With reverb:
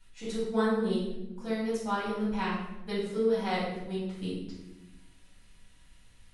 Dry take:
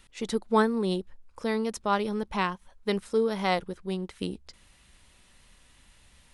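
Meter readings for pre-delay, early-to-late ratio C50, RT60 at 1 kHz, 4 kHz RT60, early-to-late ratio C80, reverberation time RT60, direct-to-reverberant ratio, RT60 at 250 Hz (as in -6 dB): 4 ms, 0.5 dB, 0.75 s, 0.70 s, 4.5 dB, 0.95 s, -9.5 dB, 1.5 s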